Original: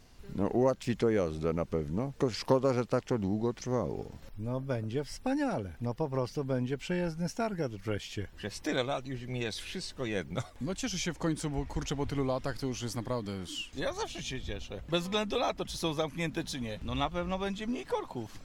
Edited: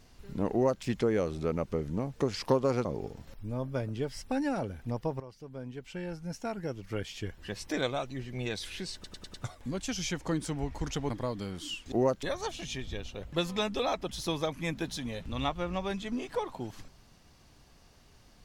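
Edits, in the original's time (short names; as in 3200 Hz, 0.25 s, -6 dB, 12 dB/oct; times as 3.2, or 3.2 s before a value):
0.52–0.83 copy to 13.79
2.85–3.8 cut
6.15–8.22 fade in, from -17 dB
9.89 stutter in place 0.10 s, 5 plays
12.05–12.97 cut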